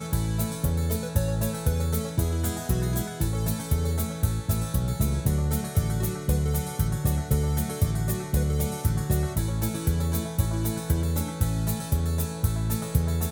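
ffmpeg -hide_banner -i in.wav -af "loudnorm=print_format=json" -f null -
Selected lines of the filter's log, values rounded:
"input_i" : "-27.0",
"input_tp" : "-8.4",
"input_lra" : "0.7",
"input_thresh" : "-37.0",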